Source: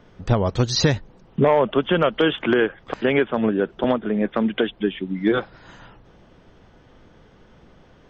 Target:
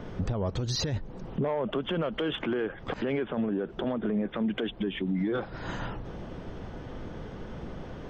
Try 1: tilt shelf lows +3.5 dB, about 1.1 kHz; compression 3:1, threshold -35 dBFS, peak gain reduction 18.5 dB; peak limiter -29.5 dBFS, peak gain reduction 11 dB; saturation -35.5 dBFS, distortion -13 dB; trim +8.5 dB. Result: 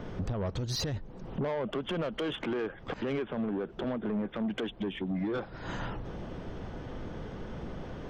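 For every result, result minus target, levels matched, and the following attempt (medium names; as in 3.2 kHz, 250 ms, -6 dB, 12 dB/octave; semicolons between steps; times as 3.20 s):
saturation: distortion +15 dB; compression: peak gain reduction +4.5 dB
tilt shelf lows +3.5 dB, about 1.1 kHz; compression 3:1, threshold -35 dBFS, peak gain reduction 18.5 dB; peak limiter -29.5 dBFS, peak gain reduction 11 dB; saturation -26 dBFS, distortion -28 dB; trim +8.5 dB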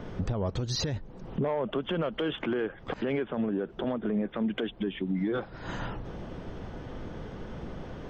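compression: peak gain reduction +4.5 dB
tilt shelf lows +3.5 dB, about 1.1 kHz; compression 3:1, threshold -28.5 dBFS, peak gain reduction 14.5 dB; peak limiter -29.5 dBFS, peak gain reduction 15.5 dB; saturation -26 dBFS, distortion -28 dB; trim +8.5 dB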